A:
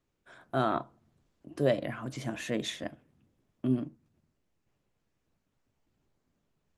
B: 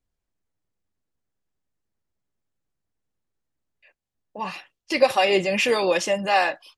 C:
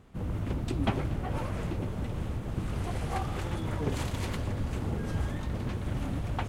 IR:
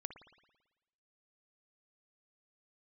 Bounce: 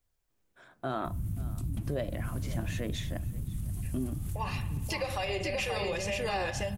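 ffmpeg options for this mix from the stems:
-filter_complex "[0:a]adelay=300,volume=-2.5dB,asplit=2[a][b];[b]volume=-22.5dB[c];[1:a]alimiter=limit=-12dB:level=0:latency=1:release=232,highshelf=f=10k:g=8.5,volume=-0.5dB,asplit=3[d][e][f];[e]volume=-4.5dB[g];[f]volume=-8.5dB[h];[2:a]firequalizer=gain_entry='entry(150,0);entry(460,-22);entry(11000,13)':delay=0.05:min_phase=1,alimiter=level_in=2.5dB:limit=-24dB:level=0:latency=1:release=115,volume=-2.5dB,adelay=900,volume=3dB[i];[d][i]amix=inputs=2:normalize=0,acrossover=split=240[j][k];[k]acompressor=threshold=-47dB:ratio=2[l];[j][l]amix=inputs=2:normalize=0,alimiter=level_in=2dB:limit=-24dB:level=0:latency=1:release=380,volume=-2dB,volume=0dB[m];[3:a]atrim=start_sample=2205[n];[g][n]afir=irnorm=-1:irlink=0[o];[c][h]amix=inputs=2:normalize=0,aecho=0:1:531:1[p];[a][m][o][p]amix=inputs=4:normalize=0,alimiter=limit=-23dB:level=0:latency=1:release=140"

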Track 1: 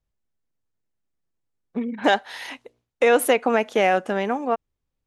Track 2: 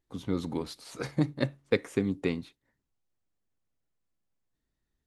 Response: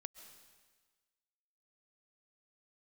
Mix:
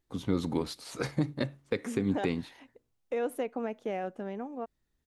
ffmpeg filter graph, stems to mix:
-filter_complex "[0:a]tiltshelf=f=650:g=7,adelay=100,volume=-16dB[a];[1:a]volume=2.5dB[b];[a][b]amix=inputs=2:normalize=0,alimiter=limit=-17dB:level=0:latency=1:release=130"

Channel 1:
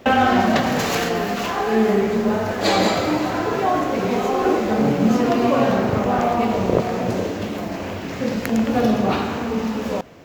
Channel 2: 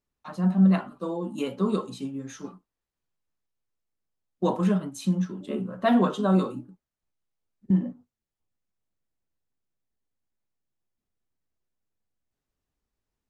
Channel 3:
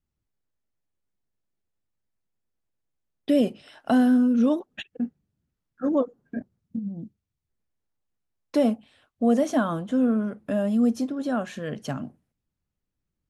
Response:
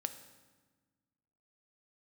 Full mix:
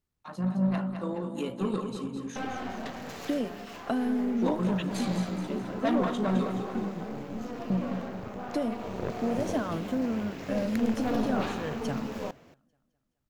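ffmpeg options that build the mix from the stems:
-filter_complex "[0:a]aeval=exprs='(tanh(5.01*val(0)+0.7)-tanh(0.7))/5.01':c=same,adelay=2300,volume=-7.5dB,afade=t=in:st=8.66:d=0.73:silence=0.375837[a];[1:a]asoftclip=type=tanh:threshold=-20dB,tremolo=f=54:d=0.4,volume=-1dB,asplit=2[b][c];[c]volume=-7.5dB[d];[2:a]acompressor=threshold=-23dB:ratio=6,volume=-3.5dB,asplit=2[e][f];[f]volume=-23dB[g];[d][g]amix=inputs=2:normalize=0,aecho=0:1:211|422|633|844|1055|1266|1477:1|0.51|0.26|0.133|0.0677|0.0345|0.0176[h];[a][b][e][h]amix=inputs=4:normalize=0"

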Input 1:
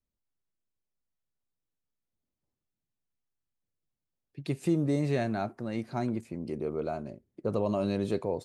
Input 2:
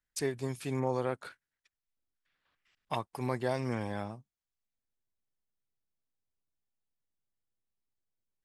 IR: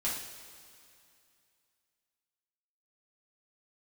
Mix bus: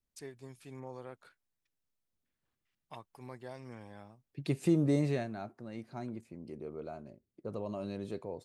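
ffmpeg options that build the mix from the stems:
-filter_complex "[0:a]volume=-0.5dB,afade=t=out:st=4.99:d=0.29:silence=0.334965[a];[1:a]volume=-14dB[b];[a][b]amix=inputs=2:normalize=0"

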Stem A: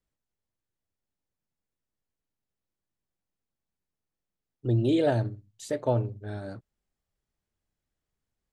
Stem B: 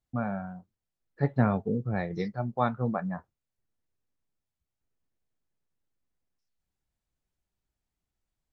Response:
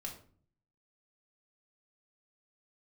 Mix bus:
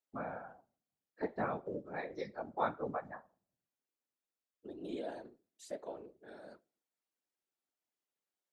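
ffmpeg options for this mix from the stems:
-filter_complex "[0:a]alimiter=limit=-22dB:level=0:latency=1:release=76,volume=-6dB,asplit=2[a][b];[b]volume=-17dB[c];[1:a]volume=-2dB,asplit=2[d][e];[e]volume=-9.5dB[f];[2:a]atrim=start_sample=2205[g];[c][f]amix=inputs=2:normalize=0[h];[h][g]afir=irnorm=-1:irlink=0[i];[a][d][i]amix=inputs=3:normalize=0,highpass=f=290:w=0.5412,highpass=f=290:w=1.3066,afftfilt=real='hypot(re,im)*cos(2*PI*random(0))':imag='hypot(re,im)*sin(2*PI*random(1))':win_size=512:overlap=0.75"

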